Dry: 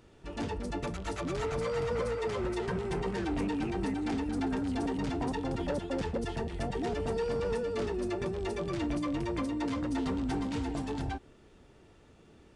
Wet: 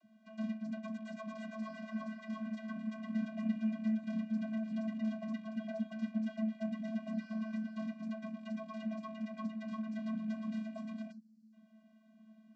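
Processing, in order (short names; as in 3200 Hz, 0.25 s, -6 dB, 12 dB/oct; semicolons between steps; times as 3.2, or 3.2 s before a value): rattling part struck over -35 dBFS, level -40 dBFS; spectral gain 11.11–11.52, 220–4400 Hz -28 dB; vocoder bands 32, square 219 Hz; gain -5 dB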